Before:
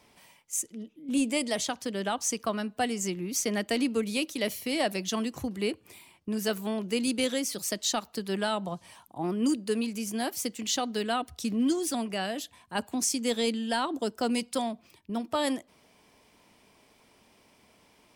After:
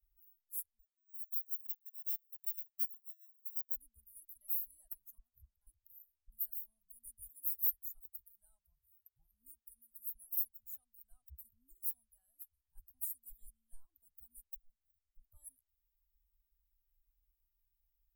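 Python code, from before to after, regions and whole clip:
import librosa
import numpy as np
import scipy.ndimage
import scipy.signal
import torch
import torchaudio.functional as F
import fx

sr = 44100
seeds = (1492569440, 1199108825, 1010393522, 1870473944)

y = fx.chain(x, sr, fx.bandpass_edges(low_hz=530.0, high_hz=2100.0),
    fx.resample_bad(factor=6, down='filtered', up='hold'), at=(0.79, 3.76))
y = fx.chain(y, sr, fx.bass_treble(bass_db=-2, treble_db=-9),
    fx.transformer_sat(knee_hz=1900.0), at=(5.18, 5.67))
y = fx.chain(y, sr, fx.high_shelf(hz=11000.0, db=5.0),
    fx.notch_comb(f0_hz=180.0), at=(7.2, 10.15))
y = fx.chain(y, sr, fx.median_filter(points=3),
    fx.auto_swell(attack_ms=266.0),
    fx.clip_hard(threshold_db=-35.5), at=(14.5, 15.21))
y = fx.bin_expand(y, sr, power=1.5)
y = scipy.signal.sosfilt(scipy.signal.cheby2(4, 70, [180.0, 5400.0], 'bandstop', fs=sr, output='sos'), y)
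y = F.gain(torch.from_numpy(y), 16.5).numpy()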